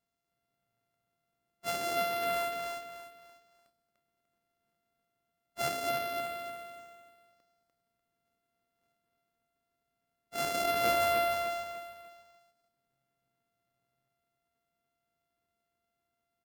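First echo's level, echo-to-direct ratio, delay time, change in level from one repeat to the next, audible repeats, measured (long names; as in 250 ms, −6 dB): −5.0 dB, −4.5 dB, 296 ms, −9.5 dB, 4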